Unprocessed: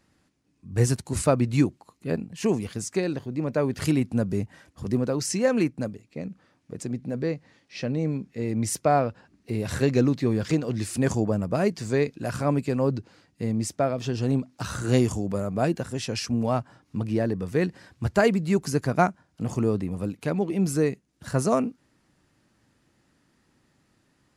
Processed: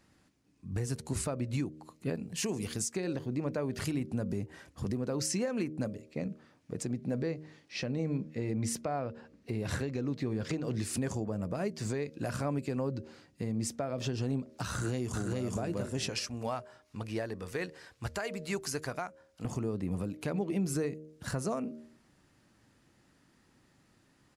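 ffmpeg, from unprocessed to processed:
-filter_complex "[0:a]asettb=1/sr,asplit=3[s0][s1][s2];[s0]atrim=end=2.154[s3];[s1]atrim=start=2.15:end=2.92,asetpts=PTS-STARTPTS,afade=t=in:d=0.004:c=qsin,afade=t=out:st=0.766:d=0.004:c=qsin,highshelf=f=3400:g=8.5[s4];[s2]atrim=start=2.916[s5];[s3][s4]acrossfade=d=0.004:c1=hsin:c2=qsin[s6];[s6][s5]acrossfade=d=0.004:c1=qsin:c2=hsin,asettb=1/sr,asplit=3[s7][s8][s9];[s7]atrim=end=8.094[s10];[s8]atrim=start=8.09:end=10.64,asetpts=PTS-STARTPTS,afade=t=in:d=0.004:c=qsin,afade=t=out:st=2.546:d=0.004:c=qsin,highshelf=f=6700:g=-7[s11];[s9]atrim=start=10.636[s12];[s10][s11]acrossfade=d=0.004:c1=hsin:c2=qsin[s13];[s13][s12]acrossfade=d=0.004:c1=qsin:c2=hsin,asplit=2[s14][s15];[s15]afade=t=in:st=14.71:d=0.01,afade=t=out:st=15.43:d=0.01,aecho=0:1:420|840|1260:0.944061|0.141609|0.0212414[s16];[s14][s16]amix=inputs=2:normalize=0,asettb=1/sr,asplit=3[s17][s18][s19];[s17]atrim=end=16.094[s20];[s18]atrim=start=16.09:end=19.45,asetpts=PTS-STARTPTS,afade=t=in:d=0.004:c=qsin,afade=t=out:st=3.356:d=0.004:c=qsin,equalizer=f=180:w=0.44:g=-13.5[s21];[s19]atrim=start=19.446[s22];[s20][s21]acrossfade=d=0.004:c1=hsin:c2=qsin[s23];[s23][s22]acrossfade=d=0.004:c1=qsin:c2=hsin,bandreject=f=77.32:t=h:w=4,bandreject=f=154.64:t=h:w=4,bandreject=f=231.96:t=h:w=4,bandreject=f=309.28:t=h:w=4,bandreject=f=386.6:t=h:w=4,bandreject=f=463.92:t=h:w=4,bandreject=f=541.24:t=h:w=4,bandreject=f=618.56:t=h:w=4,acompressor=threshold=0.0447:ratio=4,alimiter=limit=0.0668:level=0:latency=1:release=267"

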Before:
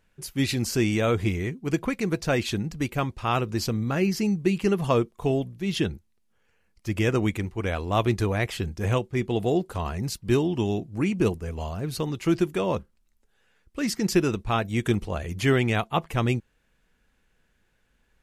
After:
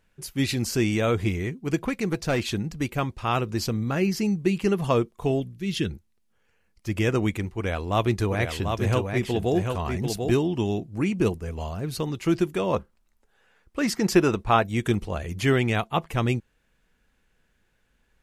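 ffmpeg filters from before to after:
-filter_complex "[0:a]asettb=1/sr,asplit=3[s0][s1][s2];[s0]atrim=end=1.804[s3];[s1]atrim=start=1.8:end=2.54,asetpts=PTS-STARTPTS,afade=t=in:d=0.004:c=qsin,afade=t=out:st=0.736:d=0.004:c=qsin,aeval=exprs='clip(val(0),-1,0.0841)':c=same[s4];[s2]atrim=start=2.536[s5];[s3][s4]acrossfade=d=0.004:c1=hsin:c2=qsin[s6];[s6][s5]acrossfade=d=0.004:c1=qsin:c2=hsin,asettb=1/sr,asplit=3[s7][s8][s9];[s7]atrim=end=5.404[s10];[s8]atrim=start=5.4:end=5.91,asetpts=PTS-STARTPTS,afade=t=in:d=0.004:c=qsin,afade=t=out:st=0.506:d=0.004:c=qsin,equalizer=f=790:w=1.4:g=-12.5[s11];[s9]atrim=start=5.906[s12];[s10][s11]acrossfade=d=0.004:c1=hsin:c2=qsin[s13];[s13][s12]acrossfade=d=0.004:c1=qsin:c2=hsin,asettb=1/sr,asplit=3[s14][s15][s16];[s14]atrim=end=7.574[s17];[s15]atrim=start=7.57:end=10.31,asetpts=PTS-STARTPTS,afade=t=in:d=0.004:c=qsin,afade=t=out:st=2.736:d=0.004:c=qsin,aecho=1:1:742:0.562,atrim=end_sample=120834[s18];[s16]atrim=start=10.306[s19];[s17][s18]acrossfade=d=0.004:c1=hsin:c2=qsin[s20];[s20][s19]acrossfade=d=0.004:c1=qsin:c2=hsin,asettb=1/sr,asplit=3[s21][s22][s23];[s21]atrim=end=12.734[s24];[s22]atrim=start=12.73:end=14.64,asetpts=PTS-STARTPTS,afade=t=in:d=0.004:c=qsin,afade=t=out:st=1.906:d=0.004:c=qsin,equalizer=f=890:w=0.54:g=7[s25];[s23]atrim=start=14.636[s26];[s24][s25]acrossfade=d=0.004:c1=hsin:c2=qsin[s27];[s27][s26]acrossfade=d=0.004:c1=qsin:c2=hsin"

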